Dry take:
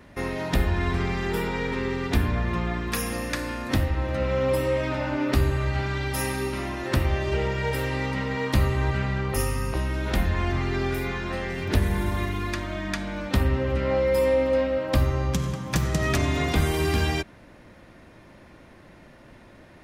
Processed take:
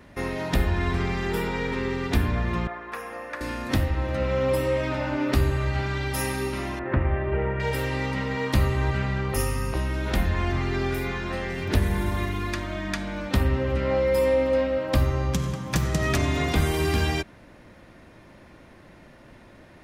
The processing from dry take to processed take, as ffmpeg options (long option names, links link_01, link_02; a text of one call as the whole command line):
ffmpeg -i in.wav -filter_complex "[0:a]asettb=1/sr,asplit=3[link_01][link_02][link_03];[link_01]atrim=end=2.674[link_04];[link_02]atrim=start=2.67:end=3.41,asetpts=PTS-STARTPTS,afade=type=in:duration=0.004:curve=qsin,afade=type=out:start_time=0.736:duration=0.004:curve=qsin,acrossover=split=440 2000:gain=0.0794 1 0.112[link_05][link_06][link_07];[link_05][link_06][link_07]amix=inputs=3:normalize=0[link_08];[link_03]atrim=start=3.406[link_09];[link_04][link_08]acrossfade=duration=0.004:curve1=hsin:curve2=qsin[link_10];[link_10][link_09]acrossfade=duration=0.004:curve1=qsin:curve2=hsin,asettb=1/sr,asplit=3[link_11][link_12][link_13];[link_11]atrim=end=6.794[link_14];[link_12]atrim=start=6.79:end=7.6,asetpts=PTS-STARTPTS,afade=type=in:duration=0.004:curve=qsin,afade=type=out:start_time=0.806:duration=0.004:curve=qsin,lowpass=frequency=2100:width=0.5412,lowpass=frequency=2100:width=1.3066[link_15];[link_13]atrim=start=7.596[link_16];[link_14][link_15]acrossfade=duration=0.004:curve1=hsin:curve2=qsin[link_17];[link_17][link_16]acrossfade=duration=0.004:curve1=qsin:curve2=hsin" out.wav